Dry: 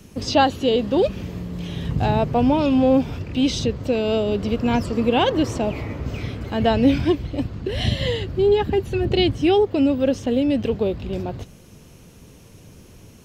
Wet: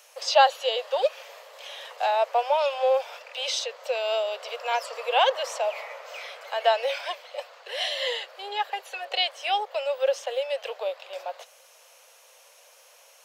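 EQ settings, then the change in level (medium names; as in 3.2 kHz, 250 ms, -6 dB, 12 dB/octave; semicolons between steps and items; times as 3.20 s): steep high-pass 520 Hz 72 dB/octave; 0.0 dB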